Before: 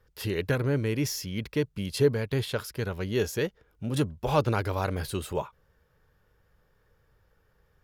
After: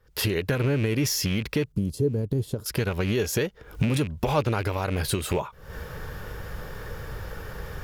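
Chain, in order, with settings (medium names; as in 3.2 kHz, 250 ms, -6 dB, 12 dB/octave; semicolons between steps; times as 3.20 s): rattle on loud lows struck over -31 dBFS, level -31 dBFS; recorder AGC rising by 80 dB/s; 1.72–2.66 s: FFT filter 340 Hz 0 dB, 2.3 kHz -27 dB, 7.2 kHz -9 dB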